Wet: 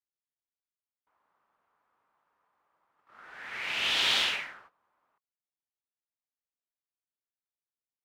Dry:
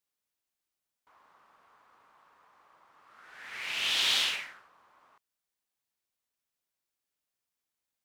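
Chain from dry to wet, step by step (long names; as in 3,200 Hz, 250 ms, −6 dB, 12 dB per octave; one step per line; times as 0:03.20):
noise gate −58 dBFS, range −17 dB
high-shelf EQ 3,600 Hz −11 dB
notch filter 1,100 Hz, Q 26
level +5.5 dB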